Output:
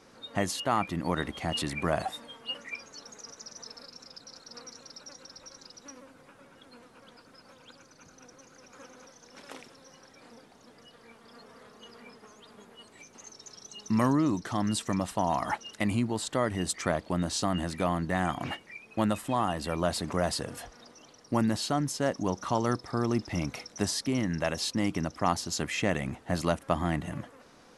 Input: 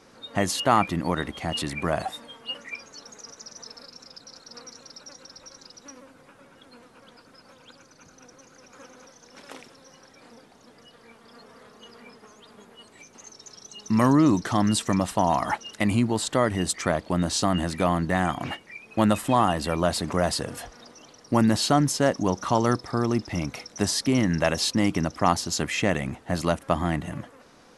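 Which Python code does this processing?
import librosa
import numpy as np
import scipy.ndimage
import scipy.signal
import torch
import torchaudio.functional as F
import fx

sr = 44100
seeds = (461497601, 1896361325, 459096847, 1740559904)

y = fx.rider(x, sr, range_db=3, speed_s=0.5)
y = y * 10.0 ** (-5.5 / 20.0)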